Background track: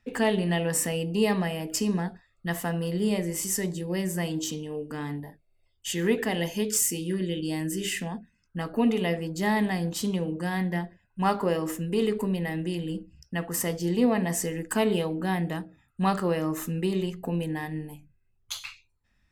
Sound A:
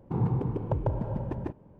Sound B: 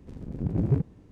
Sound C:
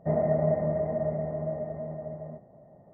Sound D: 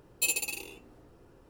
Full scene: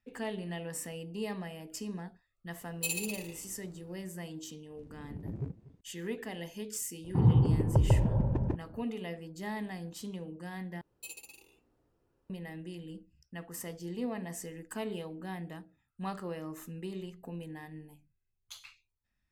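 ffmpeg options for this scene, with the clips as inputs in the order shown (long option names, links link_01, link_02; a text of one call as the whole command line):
ffmpeg -i bed.wav -i cue0.wav -i cue1.wav -i cue2.wav -i cue3.wav -filter_complex "[4:a]asplit=2[link_01][link_02];[0:a]volume=-13dB[link_03];[link_01]asplit=2[link_04][link_05];[link_05]adelay=110.8,volume=-10dB,highshelf=frequency=4000:gain=-2.49[link_06];[link_04][link_06]amix=inputs=2:normalize=0[link_07];[2:a]asplit=2[link_08][link_09];[link_09]adelay=239.1,volume=-19dB,highshelf=frequency=4000:gain=-5.38[link_10];[link_08][link_10]amix=inputs=2:normalize=0[link_11];[1:a]lowshelf=frequency=210:gain=9.5[link_12];[link_03]asplit=2[link_13][link_14];[link_13]atrim=end=10.814[link_15];[link_02]atrim=end=1.49,asetpts=PTS-STARTPTS,volume=-17.5dB[link_16];[link_14]atrim=start=12.296[link_17];[link_07]atrim=end=1.49,asetpts=PTS-STARTPTS,volume=-5.5dB,afade=type=in:duration=0.004:curve=hsin,afade=type=out:start_time=1.486:duration=0.004:curve=hsin,adelay=2610[link_18];[link_11]atrim=end=1.11,asetpts=PTS-STARTPTS,volume=-14dB,afade=type=in:duration=0.004:curve=hsin,afade=type=out:start_time=1.106:duration=0.004:curve=hsin,adelay=4700[link_19];[link_12]atrim=end=1.79,asetpts=PTS-STARTPTS,volume=-2.5dB,afade=type=in:duration=0.004:curve=hsin,afade=type=out:start_time=1.786:duration=0.004:curve=hsin,adelay=7040[link_20];[link_15][link_16]acrossfade=duration=0.004:curve1=hsin:curve2=hsin[link_21];[link_21][link_17]acrossfade=duration=0.004:curve1=hsin:curve2=hsin[link_22];[link_22][link_18][link_19][link_20]amix=inputs=4:normalize=0" out.wav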